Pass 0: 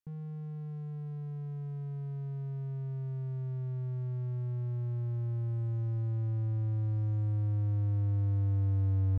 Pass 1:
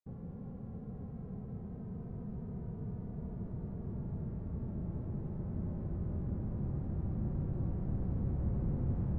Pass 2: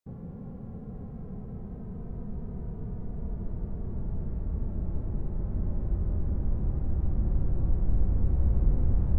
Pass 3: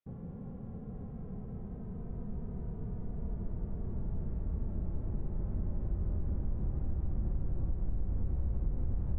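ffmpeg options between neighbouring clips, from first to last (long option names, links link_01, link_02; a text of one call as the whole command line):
ffmpeg -i in.wav -af "bass=frequency=250:gain=-7,treble=frequency=4000:gain=14,adynamicsmooth=sensitivity=5:basefreq=1300,afftfilt=real='hypot(re,im)*cos(2*PI*random(0))':imag='hypot(re,im)*sin(2*PI*random(1))':win_size=512:overlap=0.75,volume=7.5dB" out.wav
ffmpeg -i in.wav -af "asubboost=boost=6:cutoff=53,volume=4.5dB" out.wav
ffmpeg -i in.wav -af "aresample=8000,aresample=44100,acompressor=threshold=-25dB:ratio=5,volume=-3dB" out.wav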